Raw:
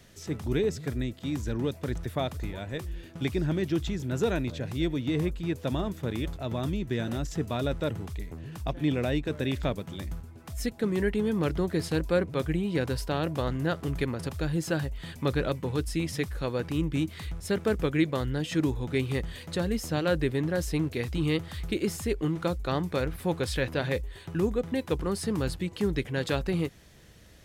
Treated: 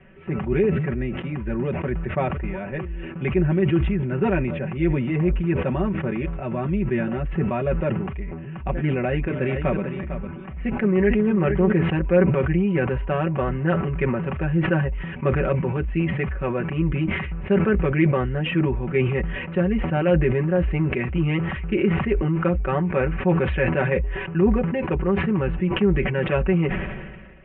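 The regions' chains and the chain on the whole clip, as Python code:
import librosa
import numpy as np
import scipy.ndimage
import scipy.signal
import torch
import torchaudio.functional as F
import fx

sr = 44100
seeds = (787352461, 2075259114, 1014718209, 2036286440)

y = fx.chain(x, sr, fx.echo_single(ms=451, db=-10.5),
    fx.doppler_dist(depth_ms=0.13), at=(8.81, 11.72))
y = scipy.signal.sosfilt(scipy.signal.butter(12, 2800.0, 'lowpass', fs=sr, output='sos'), y)
y = y + 0.96 * np.pad(y, (int(5.3 * sr / 1000.0), 0))[:len(y)]
y = fx.sustainer(y, sr, db_per_s=38.0)
y = F.gain(torch.from_numpy(y), 3.0).numpy()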